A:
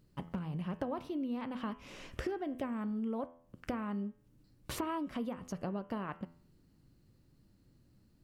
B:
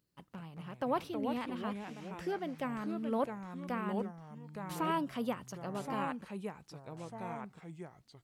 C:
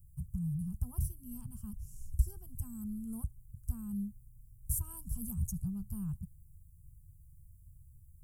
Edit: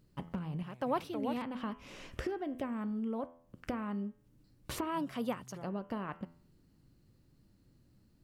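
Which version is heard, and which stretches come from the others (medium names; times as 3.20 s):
A
0.63–1.42 s: from B
4.96–5.66 s: from B, crossfade 0.10 s
not used: C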